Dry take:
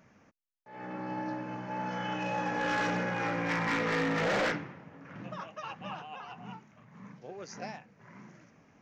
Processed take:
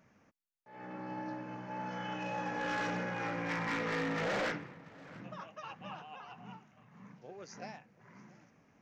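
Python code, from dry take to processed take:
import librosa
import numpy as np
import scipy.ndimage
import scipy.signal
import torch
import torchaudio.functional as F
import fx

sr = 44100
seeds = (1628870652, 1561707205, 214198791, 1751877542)

y = x + 10.0 ** (-22.5 / 20.0) * np.pad(x, (int(684 * sr / 1000.0), 0))[:len(x)]
y = y * librosa.db_to_amplitude(-5.0)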